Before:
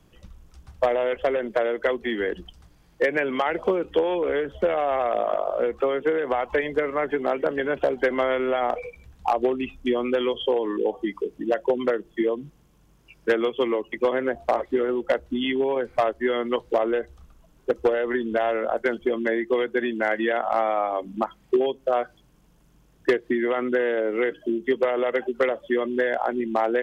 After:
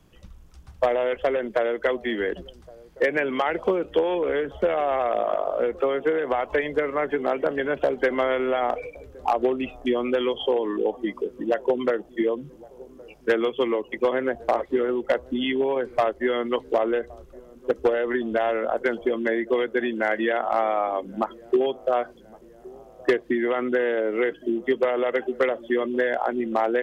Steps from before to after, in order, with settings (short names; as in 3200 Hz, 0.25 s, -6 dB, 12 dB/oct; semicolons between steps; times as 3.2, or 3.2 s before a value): dark delay 1.117 s, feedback 58%, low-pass 800 Hz, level -22 dB